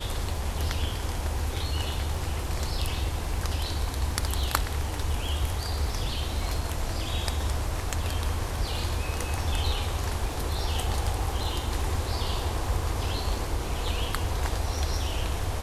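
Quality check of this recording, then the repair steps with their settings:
crackle 23/s -36 dBFS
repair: de-click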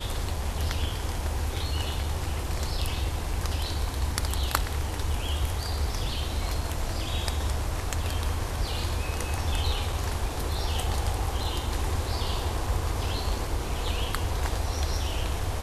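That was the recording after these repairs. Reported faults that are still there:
none

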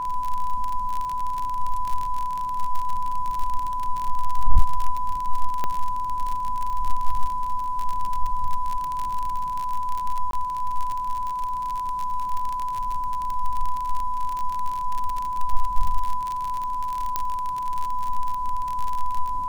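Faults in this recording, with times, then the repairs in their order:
crackle 47/s -24 dBFS
tone 1000 Hz -25 dBFS
5.64 pop -12 dBFS
10.31–10.33 gap 22 ms
17.16 pop -9 dBFS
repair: de-click; notch 1000 Hz, Q 30; interpolate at 10.31, 22 ms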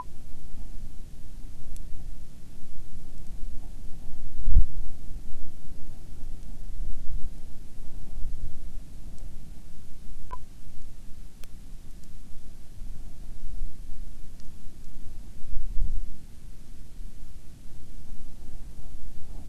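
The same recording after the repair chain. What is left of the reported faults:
none

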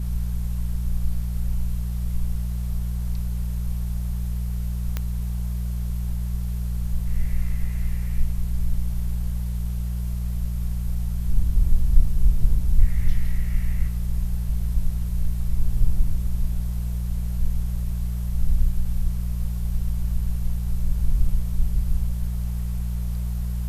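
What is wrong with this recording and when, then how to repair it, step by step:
hum 60 Hz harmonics 3 -26 dBFS
4.97 pop -12 dBFS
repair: de-click; de-hum 60 Hz, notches 3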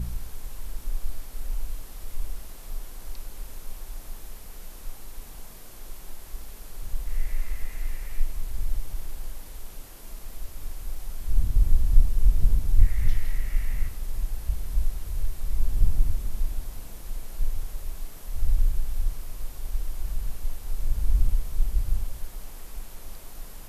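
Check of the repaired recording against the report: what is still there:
none

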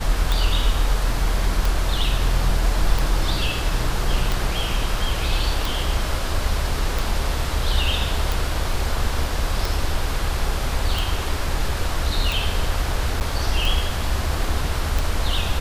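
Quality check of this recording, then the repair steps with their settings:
tick 45 rpm
13.2–13.21 gap 9.2 ms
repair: de-click; interpolate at 13.2, 9.2 ms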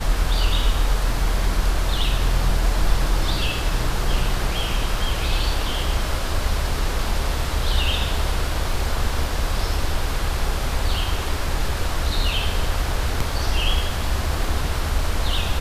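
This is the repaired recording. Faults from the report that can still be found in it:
none

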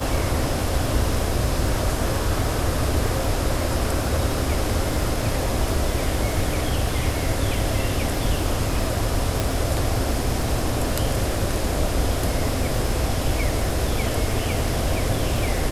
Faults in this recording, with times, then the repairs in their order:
crackle 58/s -30 dBFS
9.4 pop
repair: de-click

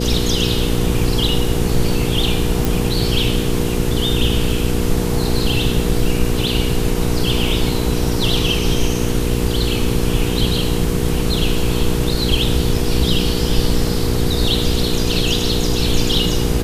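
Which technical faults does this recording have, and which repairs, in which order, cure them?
hum 60 Hz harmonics 8 -21 dBFS
2.65 pop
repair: de-click; de-hum 60 Hz, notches 8

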